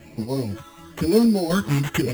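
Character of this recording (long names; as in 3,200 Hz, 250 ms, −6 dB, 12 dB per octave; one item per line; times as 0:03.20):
phaser sweep stages 8, 1 Hz, lowest notch 580–1,500 Hz
aliases and images of a low sample rate 4,800 Hz, jitter 0%
sample-and-hold tremolo 4 Hz
a shimmering, thickened sound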